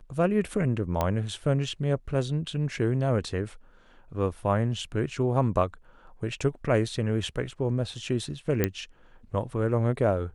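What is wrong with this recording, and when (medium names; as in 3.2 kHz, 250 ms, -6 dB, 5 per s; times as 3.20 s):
1.01 s: pop -12 dBFS
8.64 s: pop -9 dBFS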